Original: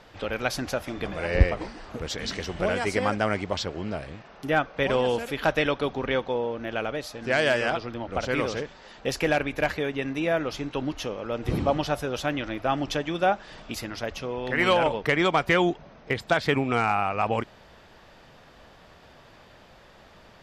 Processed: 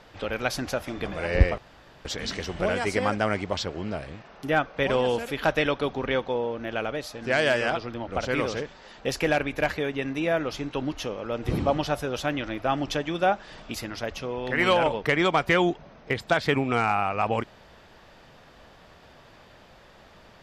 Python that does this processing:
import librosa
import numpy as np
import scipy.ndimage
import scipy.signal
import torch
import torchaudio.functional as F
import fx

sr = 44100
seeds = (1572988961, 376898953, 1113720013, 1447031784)

y = fx.edit(x, sr, fx.room_tone_fill(start_s=1.58, length_s=0.47), tone=tone)